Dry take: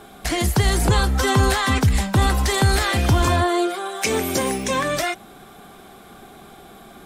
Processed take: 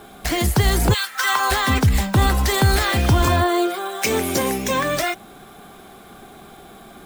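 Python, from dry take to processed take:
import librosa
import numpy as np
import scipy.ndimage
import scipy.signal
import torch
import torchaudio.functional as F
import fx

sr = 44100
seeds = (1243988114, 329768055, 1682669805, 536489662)

y = fx.highpass_res(x, sr, hz=fx.line((0.93, 2400.0), (1.5, 830.0)), q=1.7, at=(0.93, 1.5), fade=0.02)
y = np.repeat(y[::2], 2)[:len(y)]
y = y * librosa.db_to_amplitude(1.0)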